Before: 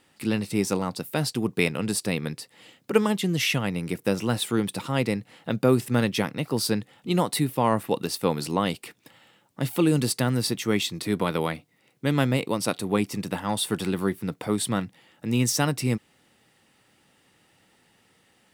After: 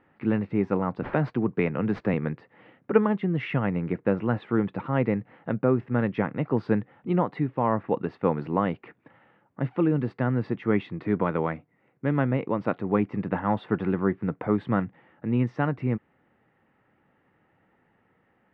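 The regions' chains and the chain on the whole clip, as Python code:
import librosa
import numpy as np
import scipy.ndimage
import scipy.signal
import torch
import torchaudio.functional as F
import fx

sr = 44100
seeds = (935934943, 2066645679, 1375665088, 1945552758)

y = fx.chain(x, sr, fx.resample_bad(factor=3, down='none', up='zero_stuff'),
    fx.band_squash(depth_pct=40), at=(1.02, 2.14))
y = scipy.signal.sosfilt(scipy.signal.butter(4, 1900.0, 'lowpass', fs=sr, output='sos'), y)
y = fx.rider(y, sr, range_db=3, speed_s=0.5)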